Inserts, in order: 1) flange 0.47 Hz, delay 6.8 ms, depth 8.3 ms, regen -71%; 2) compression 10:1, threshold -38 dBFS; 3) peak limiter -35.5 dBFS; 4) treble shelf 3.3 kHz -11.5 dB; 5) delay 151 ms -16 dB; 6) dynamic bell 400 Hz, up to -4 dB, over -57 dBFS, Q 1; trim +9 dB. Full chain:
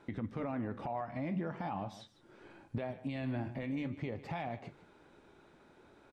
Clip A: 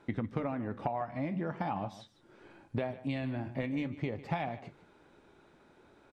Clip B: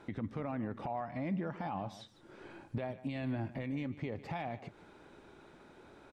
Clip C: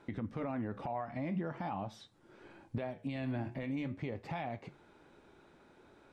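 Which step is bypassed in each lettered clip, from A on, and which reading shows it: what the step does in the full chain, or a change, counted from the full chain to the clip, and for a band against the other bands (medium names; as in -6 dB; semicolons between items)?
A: 3, crest factor change +6.0 dB; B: 1, momentary loudness spread change +4 LU; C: 5, momentary loudness spread change +1 LU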